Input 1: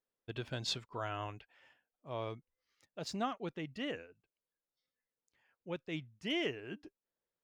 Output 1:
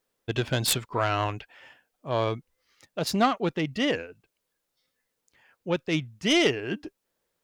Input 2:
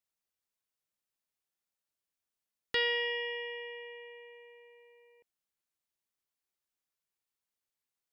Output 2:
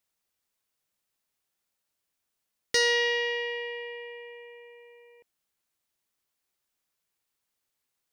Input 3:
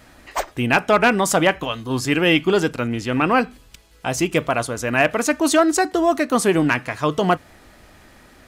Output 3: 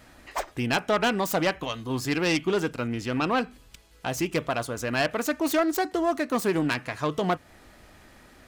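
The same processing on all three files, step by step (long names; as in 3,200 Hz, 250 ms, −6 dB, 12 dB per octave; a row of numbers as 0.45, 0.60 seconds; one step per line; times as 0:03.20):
phase distortion by the signal itself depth 0.09 ms
in parallel at −2 dB: downward compressor, threshold −25 dBFS
on the sum: loudness normalisation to −27 LKFS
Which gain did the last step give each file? +9.0, +2.5, −9.0 decibels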